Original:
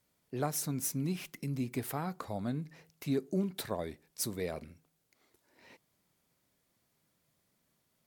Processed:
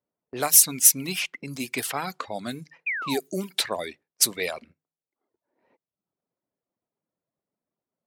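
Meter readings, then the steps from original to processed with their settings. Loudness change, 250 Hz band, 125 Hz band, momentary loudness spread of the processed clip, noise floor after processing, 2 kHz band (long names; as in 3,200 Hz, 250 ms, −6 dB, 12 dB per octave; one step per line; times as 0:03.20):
+14.0 dB, +1.5 dB, −3.0 dB, 18 LU, below −85 dBFS, +17.0 dB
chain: low-pass that shuts in the quiet parts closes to 670 Hz, open at −30 dBFS
sound drawn into the spectrogram fall, 0:02.86–0:03.20, 670–2,600 Hz −44 dBFS
RIAA equalisation recording
mains-hum notches 50/100/150 Hz
noise gate −57 dBFS, range −10 dB
dynamic equaliser 2,600 Hz, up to +7 dB, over −53 dBFS, Q 1.3
reverb reduction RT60 0.67 s
level +9 dB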